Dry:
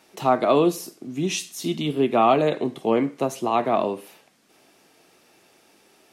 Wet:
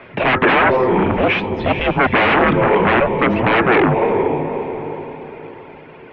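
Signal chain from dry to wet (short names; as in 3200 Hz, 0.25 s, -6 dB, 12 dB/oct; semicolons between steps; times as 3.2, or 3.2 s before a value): reverb removal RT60 1.8 s; diffused feedback echo 0.478 s, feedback 42%, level -12 dB; sine folder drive 19 dB, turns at -6 dBFS; mistuned SSB -250 Hz 430–2900 Hz; gain -2 dB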